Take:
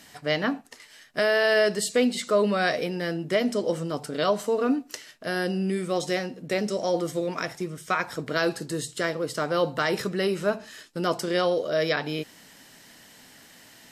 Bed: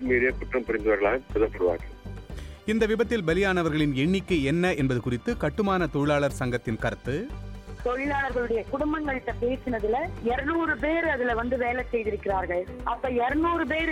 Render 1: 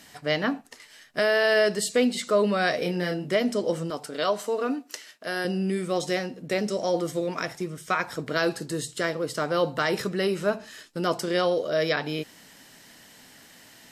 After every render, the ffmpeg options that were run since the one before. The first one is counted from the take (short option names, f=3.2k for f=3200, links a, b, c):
-filter_complex "[0:a]asettb=1/sr,asplit=3[a][b][c];[a]atrim=end=2.794[d];[b]atrim=start=2.79:end=3.31,asetpts=PTS-STARTPTS,afade=t=in:d=0.004:c=qsin,afade=t=out:st=0.516:d=0.004:c=qsin,asplit=2[e][f];[f]adelay=28,volume=-4.5dB[g];[e][g]amix=inputs=2:normalize=0,atrim=end_sample=22932[h];[c]atrim=start=3.306[i];[d][h]acrossfade=d=0.004:c1=hsin:c2=qsin[j];[j][i]acrossfade=d=0.004:c1=qsin:c2=hsin,asettb=1/sr,asplit=3[k][l][m];[k]atrim=end=3.904[n];[l]atrim=start=3.9:end=5.45,asetpts=PTS-STARTPTS,afade=t=in:d=0.004:c=qsin,afade=t=out:st=1.546:d=0.004:c=qsin,highpass=f=400:p=1[o];[m]atrim=start=5.446[p];[n][o]acrossfade=d=0.004:c1=hsin:c2=qsin[q];[q][p]acrossfade=d=0.004:c1=qsin:c2=hsin"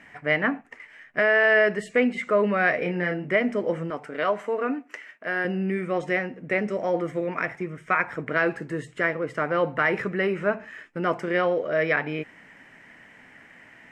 -af "lowpass=7.3k,highshelf=f=3k:t=q:w=3:g=-12"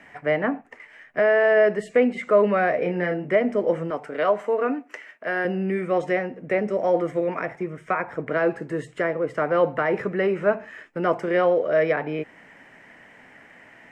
-filter_complex "[0:a]acrossover=split=440|830[a][b][c];[b]acontrast=80[d];[c]alimiter=limit=-20dB:level=0:latency=1:release=426[e];[a][d][e]amix=inputs=3:normalize=0"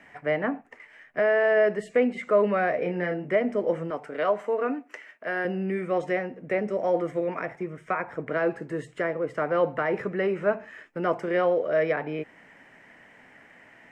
-af "volume=-3.5dB"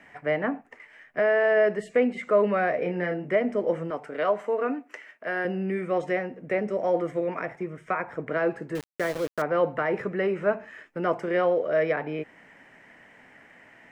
-filter_complex "[0:a]asettb=1/sr,asplit=3[a][b][c];[a]atrim=end=8.754[d];[b]atrim=start=8.75:end=9.42,asetpts=PTS-STARTPTS,afade=t=in:d=0.004:c=qsin,afade=t=out:st=0.666:d=0.004:c=qsin,aeval=exprs='val(0)*gte(abs(val(0)),0.0211)':c=same[e];[c]atrim=start=9.416[f];[d][e]acrossfade=d=0.004:c1=hsin:c2=qsin[g];[g][f]acrossfade=d=0.004:c1=qsin:c2=hsin"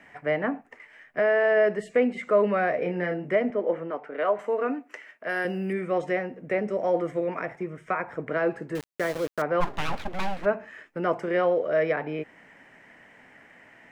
-filter_complex "[0:a]asettb=1/sr,asplit=3[a][b][c];[a]atrim=end=3.504[d];[b]atrim=start=3.5:end=4.39,asetpts=PTS-STARTPTS,afade=t=in:d=0.004:c=qsin,afade=t=out:st=0.886:d=0.004:c=qsin,highpass=240,lowpass=2.8k[e];[c]atrim=start=4.386[f];[d][e]acrossfade=d=0.004:c1=hsin:c2=qsin[g];[g][f]acrossfade=d=0.004:c1=qsin:c2=hsin,asettb=1/sr,asplit=3[h][i][j];[h]atrim=end=5.294[k];[i]atrim=start=5.29:end=5.73,asetpts=PTS-STARTPTS,afade=t=in:d=0.004:c=qsin,afade=t=out:st=0.436:d=0.004:c=qsin,aemphasis=mode=production:type=75fm[l];[j]atrim=start=5.726[m];[k][l]acrossfade=d=0.004:c1=hsin:c2=qsin[n];[n][m]acrossfade=d=0.004:c1=qsin:c2=hsin,asplit=3[o][p][q];[o]afade=t=out:st=9.6:d=0.02[r];[p]aeval=exprs='abs(val(0))':c=same,afade=t=in:st=9.6:d=0.02,afade=t=out:st=10.44:d=0.02[s];[q]afade=t=in:st=10.44:d=0.02[t];[r][s][t]amix=inputs=3:normalize=0"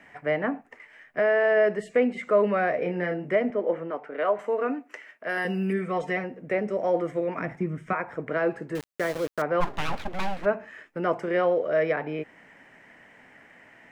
-filter_complex "[0:a]asettb=1/sr,asplit=3[a][b][c];[a]atrim=end=5.374[d];[b]atrim=start=5.37:end=6.24,asetpts=PTS-STARTPTS,afade=t=in:d=0.004:c=qsin,afade=t=out:st=0.866:d=0.004:c=qsin,aecho=1:1:4.5:0.65,atrim=end_sample=38367[e];[c]atrim=start=6.236[f];[d][e]acrossfade=d=0.004:c1=hsin:c2=qsin[g];[g][f]acrossfade=d=0.004:c1=qsin:c2=hsin,asettb=1/sr,asplit=3[h][i][j];[h]atrim=end=7.374[k];[i]atrim=start=7.37:end=7.93,asetpts=PTS-STARTPTS,afade=t=in:d=0.004:c=qsin,afade=t=out:st=0.556:d=0.004:c=qsin,lowshelf=f=330:t=q:w=1.5:g=7.5[l];[j]atrim=start=7.926[m];[k][l]acrossfade=d=0.004:c1=hsin:c2=qsin[n];[n][m]acrossfade=d=0.004:c1=qsin:c2=hsin"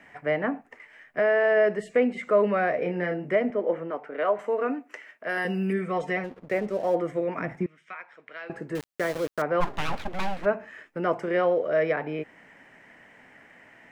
-filter_complex "[0:a]asplit=3[a][b][c];[a]afade=t=out:st=6.23:d=0.02[d];[b]aeval=exprs='sgn(val(0))*max(abs(val(0))-0.00447,0)':c=same,afade=t=in:st=6.23:d=0.02,afade=t=out:st=6.94:d=0.02[e];[c]afade=t=in:st=6.94:d=0.02[f];[d][e][f]amix=inputs=3:normalize=0,asettb=1/sr,asplit=3[g][h][i];[g]atrim=end=7.664[j];[h]atrim=start=7.66:end=8.5,asetpts=PTS-STARTPTS,afade=t=in:d=0.004:c=qsin,afade=t=out:st=0.836:d=0.004:c=qsin,bandpass=f=3.5k:t=q:w=1.4[k];[i]atrim=start=8.496[l];[j][k]acrossfade=d=0.004:c1=hsin:c2=qsin[m];[m][l]acrossfade=d=0.004:c1=qsin:c2=hsin"